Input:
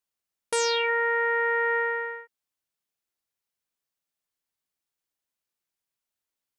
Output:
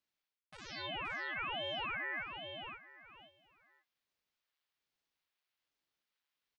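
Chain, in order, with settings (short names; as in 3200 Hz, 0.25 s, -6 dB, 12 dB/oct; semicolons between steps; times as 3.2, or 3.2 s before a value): tilt +5 dB/oct; limiter -11 dBFS, peak gain reduction 8.5 dB; reverse; compressor 12:1, threshold -37 dBFS, peak gain reduction 19.5 dB; reverse; air absorption 330 m; doubler 16 ms -12 dB; feedback echo 0.523 s, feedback 25%, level -6 dB; ring modulator with a swept carrier 690 Hz, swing 90%, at 1.2 Hz; gain +4 dB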